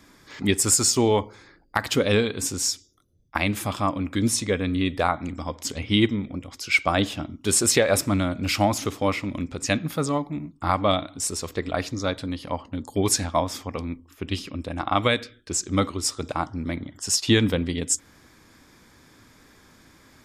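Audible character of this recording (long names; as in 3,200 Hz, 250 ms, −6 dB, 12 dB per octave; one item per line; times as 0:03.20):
background noise floor −55 dBFS
spectral slope −3.5 dB per octave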